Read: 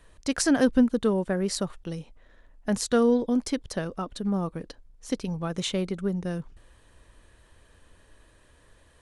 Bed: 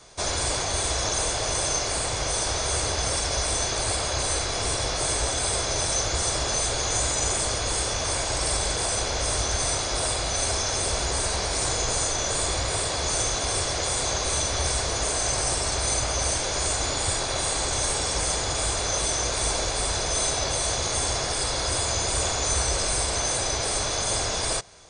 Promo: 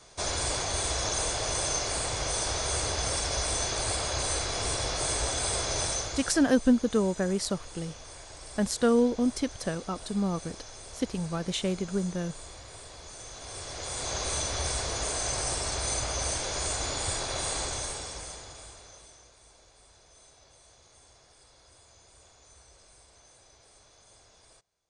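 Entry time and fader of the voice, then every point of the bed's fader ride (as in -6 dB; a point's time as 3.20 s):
5.90 s, -1.5 dB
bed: 5.86 s -4 dB
6.59 s -20 dB
13.18 s -20 dB
14.20 s -5.5 dB
17.60 s -5.5 dB
19.39 s -32 dB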